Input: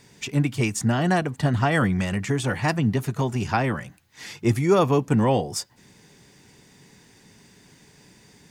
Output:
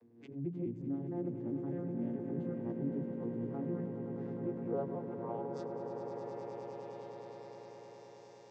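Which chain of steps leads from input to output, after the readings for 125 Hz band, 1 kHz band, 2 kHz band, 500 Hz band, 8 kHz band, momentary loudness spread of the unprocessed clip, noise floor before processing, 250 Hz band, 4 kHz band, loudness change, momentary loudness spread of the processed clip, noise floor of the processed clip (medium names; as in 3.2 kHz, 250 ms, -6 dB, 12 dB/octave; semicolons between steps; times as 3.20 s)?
-19.0 dB, -20.0 dB, -31.5 dB, -13.5 dB, under -35 dB, 9 LU, -55 dBFS, -12.5 dB, under -30 dB, -16.5 dB, 12 LU, -56 dBFS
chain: vocoder on a broken chord minor triad, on A#2, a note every 215 ms; hum notches 60/120/180 Hz; reverse; compression 6:1, threshold -35 dBFS, peak gain reduction 20.5 dB; reverse; band-pass sweep 320 Hz -> 5.9 kHz, 3.99–7.80 s; echo with a slow build-up 103 ms, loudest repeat 8, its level -10 dB; swell ahead of each attack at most 90 dB/s; trim +5.5 dB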